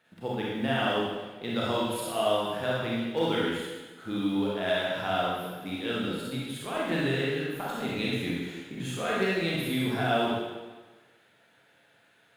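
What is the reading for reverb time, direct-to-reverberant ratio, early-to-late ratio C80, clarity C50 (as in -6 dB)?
1.3 s, -6.0 dB, 0.5 dB, -2.5 dB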